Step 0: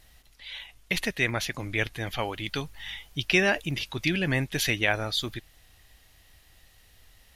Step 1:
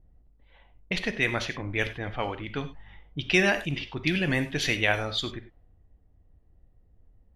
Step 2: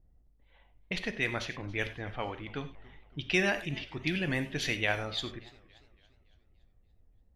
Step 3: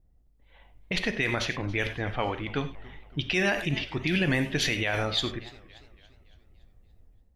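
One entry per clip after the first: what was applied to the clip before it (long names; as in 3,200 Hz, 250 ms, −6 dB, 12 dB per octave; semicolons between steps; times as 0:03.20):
low-pass that shuts in the quiet parts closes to 350 Hz, open at −21.5 dBFS; reverb whose tail is shaped and stops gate 120 ms flat, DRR 9 dB
feedback echo with a swinging delay time 285 ms, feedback 48%, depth 162 cents, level −22 dB; level −5.5 dB
brickwall limiter −24 dBFS, peak gain reduction 10.5 dB; automatic gain control gain up to 8 dB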